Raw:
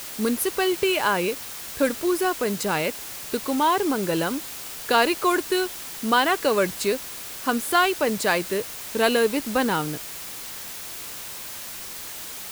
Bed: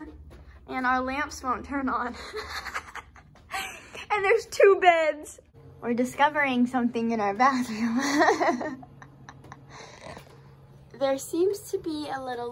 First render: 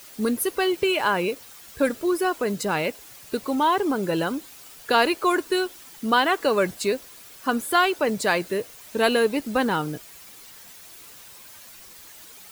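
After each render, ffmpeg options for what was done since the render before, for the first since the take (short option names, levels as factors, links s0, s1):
-af "afftdn=nr=11:nf=-36"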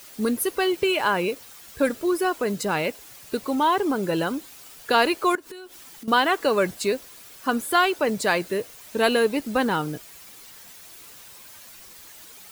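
-filter_complex "[0:a]asettb=1/sr,asplit=3[s0][s1][s2];[s0]atrim=end=5.354[s3];[s1]atrim=start=5.35:end=6.08,asetpts=PTS-STARTPTS,afade=t=in:d=0.004:c=qsin,afade=t=out:st=0.726:d=0.004:c=qsin,acompressor=threshold=0.0141:ratio=8:attack=3.2:release=140:knee=1:detection=peak[s4];[s2]atrim=start=6.076[s5];[s3][s4]acrossfade=d=0.004:c1=hsin:c2=qsin[s6];[s6][s5]acrossfade=d=0.004:c1=qsin:c2=hsin"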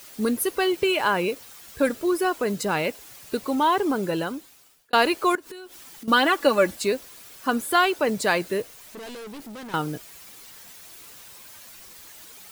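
-filter_complex "[0:a]asettb=1/sr,asplit=3[s0][s1][s2];[s0]atrim=end=6.094[s3];[s1]atrim=start=6.09:end=6.76,asetpts=PTS-STARTPTS,afade=t=in:d=0.004:c=qsin,afade=t=out:st=0.666:d=0.004:c=qsin,aecho=1:1:3.5:0.65,atrim=end_sample=29547[s4];[s2]atrim=start=6.756[s5];[s3][s4]acrossfade=d=0.004:c1=hsin:c2=qsin[s6];[s6][s5]acrossfade=d=0.004:c1=qsin:c2=hsin,asettb=1/sr,asplit=3[s7][s8][s9];[s7]atrim=end=8.624[s10];[s8]atrim=start=8.62:end=9.74,asetpts=PTS-STARTPTS,afade=t=in:d=0.004:c=qsin,afade=t=out:st=1.116:d=0.004:c=qsin,aeval=exprs='(tanh(70.8*val(0)+0.2)-tanh(0.2))/70.8':c=same[s11];[s9]atrim=start=9.736[s12];[s10][s11]acrossfade=d=0.004:c1=hsin:c2=qsin[s13];[s13][s12]acrossfade=d=0.004:c1=qsin:c2=hsin,asplit=2[s14][s15];[s14]atrim=end=4.93,asetpts=PTS-STARTPTS,afade=t=out:st=3.96:d=0.97[s16];[s15]atrim=start=4.93,asetpts=PTS-STARTPTS,afade=t=in:d=0.004:c=hsin[s17];[s16][s17]concat=n=2:v=0:a=1"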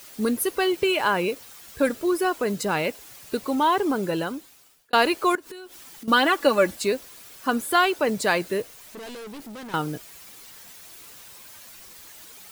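-af anull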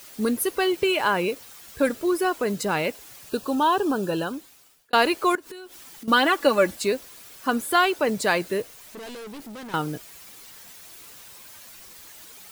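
-filter_complex "[0:a]asettb=1/sr,asplit=3[s0][s1][s2];[s0]atrim=end=3.294[s3];[s1]atrim=start=3.29:end=4.33,asetpts=PTS-STARTPTS,afade=t=in:d=0.004:c=qsin,afade=t=out:st=1.036:d=0.004:c=qsin,asuperstop=centerf=2100:order=8:qfactor=3.9[s4];[s2]atrim=start=4.326[s5];[s3][s4]acrossfade=d=0.004:c1=hsin:c2=qsin[s6];[s6][s5]acrossfade=d=0.004:c1=qsin:c2=hsin"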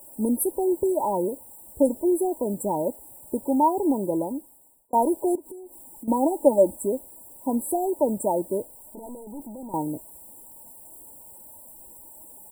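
-af "afftfilt=real='re*(1-between(b*sr/4096,1000,7400))':imag='im*(1-between(b*sr/4096,1000,7400))':win_size=4096:overlap=0.75,aecho=1:1:3.4:0.42"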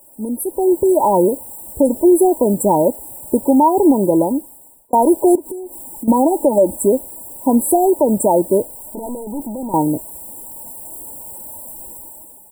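-af "alimiter=limit=0.15:level=0:latency=1:release=111,dynaudnorm=f=180:g=7:m=4.47"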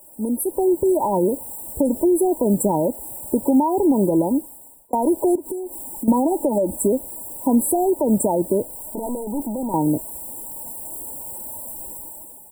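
-filter_complex "[0:a]alimiter=limit=0.422:level=0:latency=1:release=48,acrossover=split=280[s0][s1];[s1]acompressor=threshold=0.0891:ratio=2.5[s2];[s0][s2]amix=inputs=2:normalize=0"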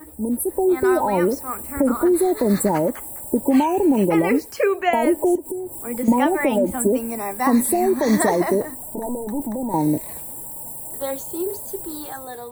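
-filter_complex "[1:a]volume=0.794[s0];[0:a][s0]amix=inputs=2:normalize=0"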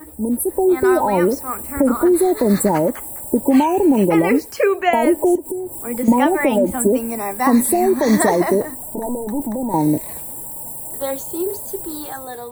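-af "volume=1.41"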